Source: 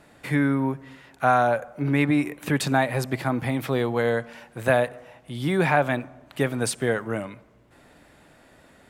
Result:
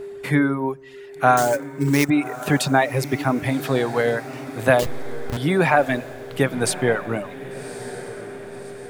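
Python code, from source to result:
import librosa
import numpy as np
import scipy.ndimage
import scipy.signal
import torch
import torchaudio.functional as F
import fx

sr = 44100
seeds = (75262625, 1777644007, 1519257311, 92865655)

p1 = fx.delta_hold(x, sr, step_db=-21.5, at=(4.79, 5.37))
p2 = p1 + 10.0 ** (-35.0 / 20.0) * np.sin(2.0 * np.pi * 400.0 * np.arange(len(p1)) / sr)
p3 = fx.sample_hold(p2, sr, seeds[0], rate_hz=7900.0, jitter_pct=20, at=(1.37, 2.1))
p4 = fx.dereverb_blind(p3, sr, rt60_s=1.0)
p5 = p4 + fx.echo_diffused(p4, sr, ms=1143, feedback_pct=50, wet_db=-14, dry=0)
y = F.gain(torch.from_numpy(p5), 4.5).numpy()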